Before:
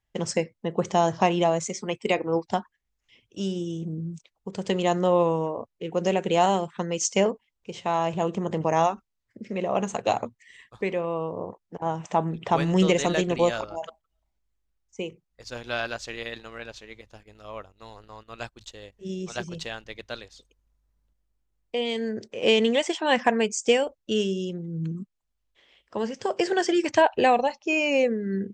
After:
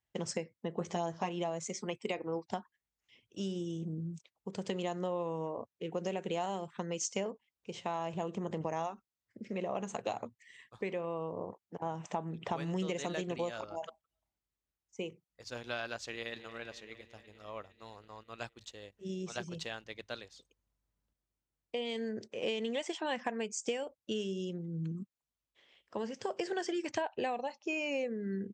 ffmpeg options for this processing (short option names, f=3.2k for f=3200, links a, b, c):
-filter_complex "[0:a]asettb=1/sr,asplit=3[a][b][c];[a]atrim=end=0.794[d];[b]atrim=start=0.79:end=1.29,asetpts=PTS-STARTPTS,afade=t=in:d=0.004:c=qsin,afade=t=out:st=0.496:d=0.004:c=qsin,asplit=2[e][f];[f]adelay=12,volume=-3dB[g];[e][g]amix=inputs=2:normalize=0,atrim=end_sample=22050[h];[c]atrim=start=1.286[i];[d][h]acrossfade=d=0.004:c1=hsin:c2=qsin[j];[j][i]acrossfade=d=0.004:c1=qsin:c2=hsin,asplit=2[k][l];[l]afade=t=in:st=16.05:d=0.01,afade=t=out:st=16.51:d=0.01,aecho=0:1:230|460|690|920|1150|1380|1610|1840|2070|2300|2530:0.199526|0.149645|0.112234|0.0841751|0.0631313|0.0473485|0.0355114|0.0266335|0.0199752|0.0149814|0.011236[m];[k][m]amix=inputs=2:normalize=0,highpass=80,acompressor=threshold=-27dB:ratio=4,volume=-6dB"